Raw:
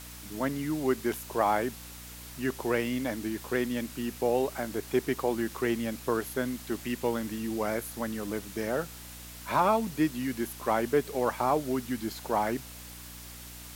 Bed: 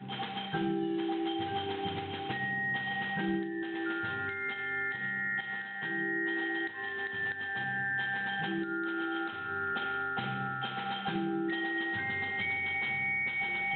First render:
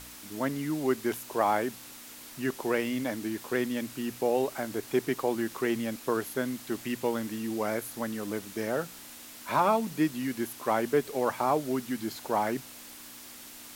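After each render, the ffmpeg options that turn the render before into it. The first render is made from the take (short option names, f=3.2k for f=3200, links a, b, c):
-af "bandreject=f=60:t=h:w=4,bandreject=f=120:t=h:w=4,bandreject=f=180:t=h:w=4"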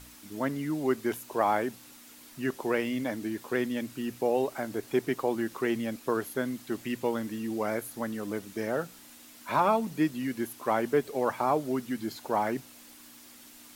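-af "afftdn=nr=6:nf=-47"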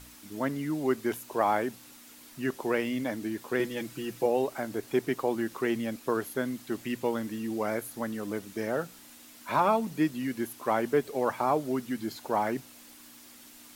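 -filter_complex "[0:a]asettb=1/sr,asplit=3[a][b][c];[a]atrim=end=3.594[d];[b]atrim=start=3.59:end=4.26,asetpts=PTS-STARTPTS,afade=t=in:d=0.004:c=qsin,afade=t=out:st=0.666:d=0.004:c=qsin,aecho=1:1:6:0.68,atrim=end_sample=29547[e];[c]atrim=start=4.256[f];[d][e]acrossfade=d=0.004:c1=hsin:c2=qsin[g];[g][f]acrossfade=d=0.004:c1=qsin:c2=hsin"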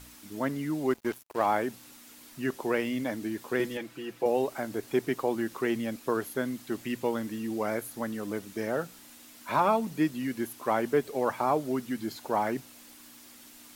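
-filter_complex "[0:a]asettb=1/sr,asplit=3[a][b][c];[a]atrim=end=0.904[d];[b]atrim=start=0.9:end=1.46,asetpts=PTS-STARTPTS,afade=t=in:d=0.004:c=qsin,afade=t=out:st=0.556:d=0.004:c=qsin,aeval=exprs='sgn(val(0))*max(abs(val(0))-0.00891,0)':c=same[e];[c]atrim=start=1.456[f];[d][e]acrossfade=d=0.004:c1=hsin:c2=qsin[g];[g][f]acrossfade=d=0.004:c1=qsin:c2=hsin,asettb=1/sr,asplit=3[h][i][j];[h]atrim=end=3.774[k];[i]atrim=start=3.77:end=4.26,asetpts=PTS-STARTPTS,afade=t=in:d=0.004:c=qsin,afade=t=out:st=0.486:d=0.004:c=qsin,bass=f=250:g=-9,treble=f=4k:g=-9[l];[j]atrim=start=4.256[m];[k][l]acrossfade=d=0.004:c1=hsin:c2=qsin[n];[n][m]acrossfade=d=0.004:c1=qsin:c2=hsin"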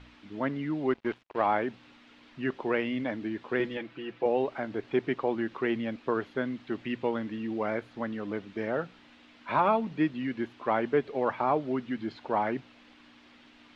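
-af "lowpass=f=3.2k:w=0.5412,lowpass=f=3.2k:w=1.3066,aemphasis=mode=production:type=cd"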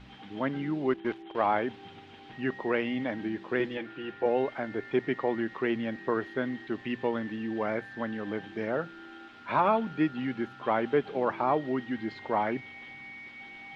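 -filter_complex "[1:a]volume=-13.5dB[a];[0:a][a]amix=inputs=2:normalize=0"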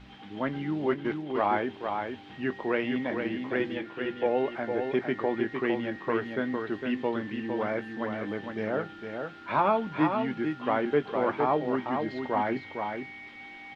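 -filter_complex "[0:a]asplit=2[a][b];[b]adelay=20,volume=-13dB[c];[a][c]amix=inputs=2:normalize=0,aecho=1:1:457:0.531"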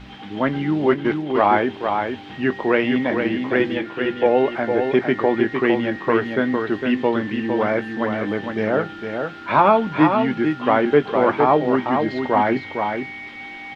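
-af "volume=10dB,alimiter=limit=-3dB:level=0:latency=1"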